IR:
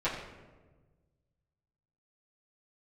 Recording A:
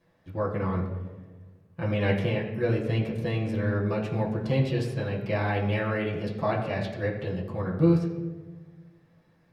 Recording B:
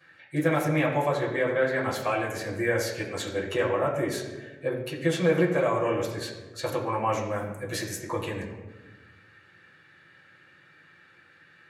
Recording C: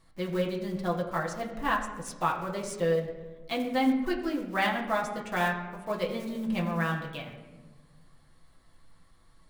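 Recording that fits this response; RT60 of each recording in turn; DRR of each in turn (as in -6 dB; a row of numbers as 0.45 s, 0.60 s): B; 1.3 s, 1.3 s, 1.3 s; -7.5 dB, -12.5 dB, -3.0 dB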